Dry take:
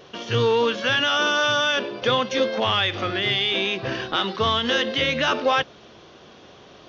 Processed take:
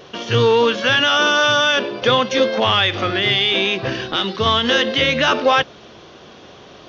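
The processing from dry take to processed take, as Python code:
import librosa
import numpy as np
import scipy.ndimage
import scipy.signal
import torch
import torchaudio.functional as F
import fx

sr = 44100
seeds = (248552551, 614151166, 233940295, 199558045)

y = fx.dynamic_eq(x, sr, hz=1000.0, q=0.71, threshold_db=-35.0, ratio=4.0, max_db=-6, at=(3.88, 4.46))
y = F.gain(torch.from_numpy(y), 5.5).numpy()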